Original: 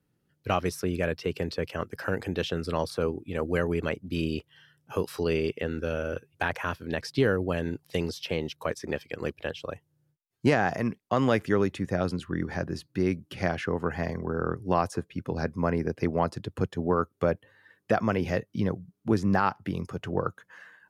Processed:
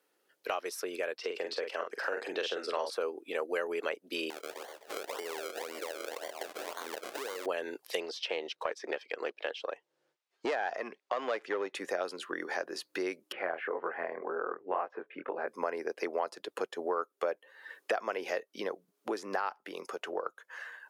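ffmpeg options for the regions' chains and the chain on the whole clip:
-filter_complex "[0:a]asettb=1/sr,asplit=3[s0][s1][s2];[s0]atrim=end=1.184[s3];[s1]atrim=start=1.18:end=2.93,asetpts=PTS-STARTPTS,afade=t=in:d=0.004:c=qsin,afade=t=out:st=1.746:d=0.004:c=qsin,highpass=140,lowpass=7800,asplit=2[s4][s5];[s5]adelay=45,volume=0.501[s6];[s4][s6]amix=inputs=2:normalize=0,atrim=end_sample=77175[s7];[s2]atrim=start=2.926[s8];[s3][s7]acrossfade=d=0.004:c1=hsin:c2=qsin[s9];[s9][s8]acrossfade=d=0.004:c1=qsin:c2=hsin,asettb=1/sr,asplit=3[s10][s11][s12];[s10]atrim=end=4.304[s13];[s11]atrim=start=4.3:end=7.46,asetpts=PTS-STARTPTS,afade=t=in:d=0.004:c=qsin,afade=t=out:st=3.156:d=0.004:c=qsin,asplit=5[s14][s15][s16][s17][s18];[s15]adelay=127,afreqshift=77,volume=0.188[s19];[s16]adelay=254,afreqshift=154,volume=0.0776[s20];[s17]adelay=381,afreqshift=231,volume=0.0316[s21];[s18]adelay=508,afreqshift=308,volume=0.013[s22];[s14][s19][s20][s21][s22]amix=inputs=5:normalize=0,atrim=end_sample=139356,acompressor=threshold=0.0126:ratio=10:attack=3.2:release=140:knee=1:detection=peak,acrusher=samples=33:mix=1:aa=0.000001:lfo=1:lforange=33:lforate=1.9[s23];[s12]atrim=start=7.456[s24];[s13][s23]acrossfade=d=0.004:c1=hsin:c2=qsin[s25];[s25][s24]acrossfade=d=0.004:c1=qsin:c2=hsin,asettb=1/sr,asplit=3[s26][s27][s28];[s26]atrim=end=8.004[s29];[s27]atrim=start=8:end=11.75,asetpts=PTS-STARTPTS,afade=t=in:d=0.004:c=qsin,afade=t=out:st=3.746:d=0.004:c=qsin,lowpass=4900,aeval=exprs='(tanh(5.62*val(0)+0.5)-tanh(0.5))/5.62':c=same[s30];[s28]atrim=start=11.746[s31];[s29][s30]acrossfade=d=0.004:c1=hsin:c2=qsin[s32];[s32][s31]acrossfade=d=0.004:c1=qsin:c2=hsin,asettb=1/sr,asplit=3[s33][s34][s35];[s33]atrim=end=13.324[s36];[s34]atrim=start=13.32:end=15.48,asetpts=PTS-STARTPTS,afade=t=in:d=0.004:c=qsin,afade=t=out:st=2.156:d=0.004:c=qsin,lowpass=f=2300:w=0.5412,lowpass=f=2300:w=1.3066,flanger=delay=17:depth=7.8:speed=1.9[s37];[s35]atrim=start=15.476[s38];[s36][s37]acrossfade=d=0.004:c1=hsin:c2=qsin[s39];[s39][s38]acrossfade=d=0.004:c1=qsin:c2=hsin,dynaudnorm=f=250:g=17:m=1.78,highpass=f=420:w=0.5412,highpass=f=420:w=1.3066,acompressor=threshold=0.00562:ratio=2.5,volume=2.24"

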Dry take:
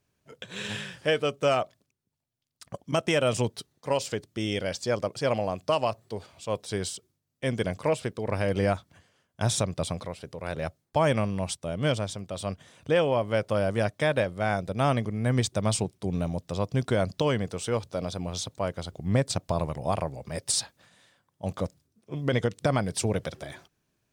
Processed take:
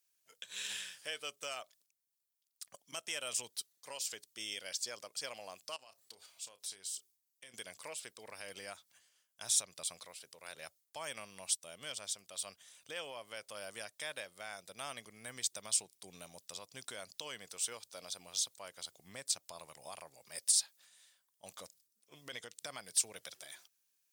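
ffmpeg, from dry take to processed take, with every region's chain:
-filter_complex "[0:a]asettb=1/sr,asplit=3[s0][s1][s2];[s0]atrim=end=5.764[s3];[s1]atrim=start=5.76:end=7.54,asetpts=PTS-STARTPTS,afade=t=in:d=0.004:c=qsin,afade=t=out:st=1.776:d=0.004:c=qsin,acompressor=threshold=0.0126:ratio=6:attack=3.2:release=140:knee=1:detection=peak,asplit=2[s4][s5];[s5]adelay=31,volume=0.224[s6];[s4][s6]amix=inputs=2:normalize=0,atrim=end_sample=78498[s7];[s2]atrim=start=7.536[s8];[s3][s7]acrossfade=d=0.004:c1=hsin:c2=qsin[s9];[s9][s8]acrossfade=d=0.004:c1=qsin:c2=hsin,alimiter=limit=0.119:level=0:latency=1:release=190,aderivative,volume=1.26"

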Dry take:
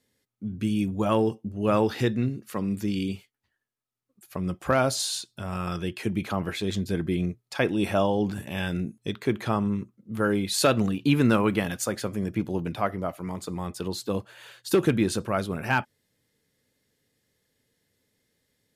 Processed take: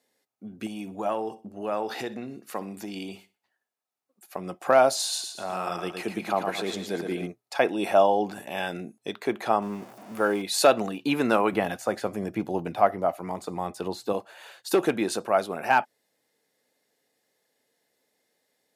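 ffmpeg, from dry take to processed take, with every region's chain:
-filter_complex "[0:a]asettb=1/sr,asplit=3[s0][s1][s2];[s0]atrim=end=0.664[s3];[s1]atrim=start=0.66:end=4.38,asetpts=PTS-STARTPTS,afade=t=in:d=0.004:c=qsin,afade=t=out:st=3.716:d=0.004:c=qsin,acompressor=threshold=0.0501:ratio=5:attack=3.2:release=140:knee=1:detection=peak,aecho=1:1:62|124|186:0.126|0.0428|0.0146,atrim=end_sample=164052[s4];[s2]atrim=start=4.376[s5];[s3][s4]acrossfade=d=0.004:c1=hsin:c2=qsin[s6];[s6][s5]acrossfade=d=0.004:c1=qsin:c2=hsin,asettb=1/sr,asplit=3[s7][s8][s9];[s7]atrim=end=5.014[s10];[s8]atrim=start=5.01:end=7.27,asetpts=PTS-STARTPTS,afade=t=in:d=0.004:c=qsin,afade=t=out:st=2.256:d=0.004:c=qsin,highpass=89,aecho=1:1:114|228|342|456:0.501|0.185|0.0686|0.0254,atrim=end_sample=99666[s11];[s9]atrim=start=7.266[s12];[s10][s11]acrossfade=d=0.004:c1=hsin:c2=qsin[s13];[s13][s12]acrossfade=d=0.004:c1=qsin:c2=hsin,asettb=1/sr,asplit=3[s14][s15][s16];[s14]atrim=end=9.624[s17];[s15]atrim=start=9.62:end=10.42,asetpts=PTS-STARTPTS,afade=t=in:d=0.004:c=qsin,afade=t=out:st=0.796:d=0.004:c=qsin,aeval=exprs='val(0)+0.5*0.0106*sgn(val(0))':c=same,bandreject=f=4000:w=12[s18];[s16]atrim=start=10.416[s19];[s17][s18]acrossfade=d=0.004:c1=hsin:c2=qsin[s20];[s20][s19]acrossfade=d=0.004:c1=qsin:c2=hsin,asettb=1/sr,asplit=3[s21][s22][s23];[s21]atrim=end=11.524[s24];[s22]atrim=start=11.52:end=14.13,asetpts=PTS-STARTPTS,afade=t=in:d=0.004:c=qsin,afade=t=out:st=2.606:d=0.004:c=qsin,acrossover=split=2700[s25][s26];[s26]acompressor=threshold=0.01:ratio=4:attack=1:release=60[s27];[s25][s27]amix=inputs=2:normalize=0,equalizer=f=65:t=o:w=2.5:g=13[s28];[s23]atrim=start=14.126[s29];[s24][s28]acrossfade=d=0.004:c1=hsin:c2=qsin[s30];[s30][s29]acrossfade=d=0.004:c1=qsin:c2=hsin,highpass=310,equalizer=f=740:w=2.3:g=10,bandreject=f=3200:w=19"

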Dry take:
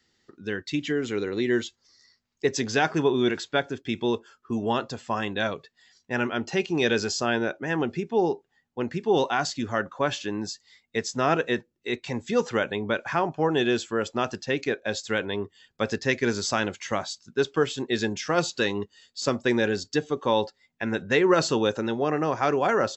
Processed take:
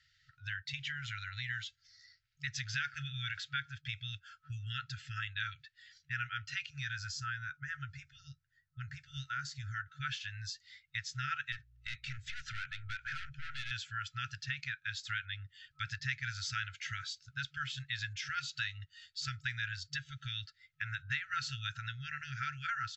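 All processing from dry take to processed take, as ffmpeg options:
-filter_complex "[0:a]asettb=1/sr,asplit=3[s0][s1][s2];[s0]atrim=end=6.704[s3];[s1]atrim=start=6.7:end=9.86,asetpts=PTS-STARTPTS,afade=t=in:d=0.004:c=qsin,afade=t=out:st=3.156:d=0.004:c=qsin,equalizer=f=2900:w=1:g=-12,asplit=2[s4][s5];[s5]adelay=13,volume=0.211[s6];[s4][s6]amix=inputs=2:normalize=0,atrim=end_sample=139356[s7];[s2]atrim=start=9.856[s8];[s3][s7]acrossfade=d=0.004:c1=hsin:c2=qsin[s9];[s9][s8]acrossfade=d=0.004:c1=qsin:c2=hsin,asettb=1/sr,asplit=3[s10][s11][s12];[s10]atrim=end=11.524[s13];[s11]atrim=start=11.52:end=13.71,asetpts=PTS-STARTPTS,afade=t=in:d=0.004:c=qsin,afade=t=out:st=2.186:d=0.004:c=qsin,aeval=exprs='(tanh(25.1*val(0)+0.35)-tanh(0.35))/25.1':c=same,aeval=exprs='val(0)+0.000891*(sin(2*PI*60*n/s)+sin(2*PI*2*60*n/s)/2+sin(2*PI*3*60*n/s)/3+sin(2*PI*4*60*n/s)/4+sin(2*PI*5*60*n/s)/5)':c=same[s14];[s12]atrim=start=13.706[s15];[s13][s14]acrossfade=d=0.004:c1=hsin:c2=qsin[s16];[s16][s15]acrossfade=d=0.004:c1=qsin:c2=hsin,lowpass=4500,afftfilt=real='re*(1-between(b*sr/4096,140,1300))':imag='im*(1-between(b*sr/4096,140,1300))':win_size=4096:overlap=0.75,acompressor=threshold=0.00794:ratio=2,volume=1.12"

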